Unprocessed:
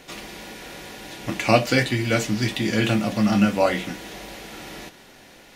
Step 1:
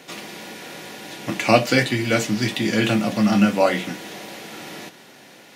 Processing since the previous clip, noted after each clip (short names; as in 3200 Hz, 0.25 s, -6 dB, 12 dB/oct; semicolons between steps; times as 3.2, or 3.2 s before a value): HPF 120 Hz 24 dB/oct; gain +2 dB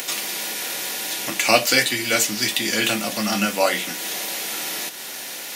in parallel at +1 dB: upward compressor, threshold -20 dBFS; on the sum: RIAA curve recording; gain -7 dB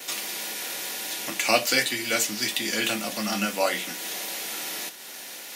HPF 130 Hz; expander -30 dBFS; gain -5 dB